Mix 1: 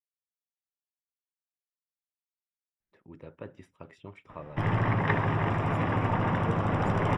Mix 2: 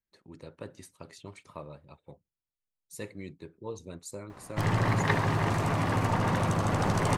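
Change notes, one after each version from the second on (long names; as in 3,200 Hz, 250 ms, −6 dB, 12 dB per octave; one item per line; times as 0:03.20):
speech: entry −2.80 s
master: remove Savitzky-Golay smoothing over 25 samples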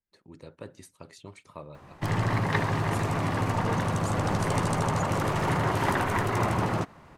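background: entry −2.55 s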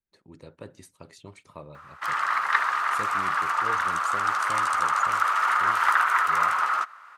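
background: add high-pass with resonance 1,300 Hz, resonance Q 6.5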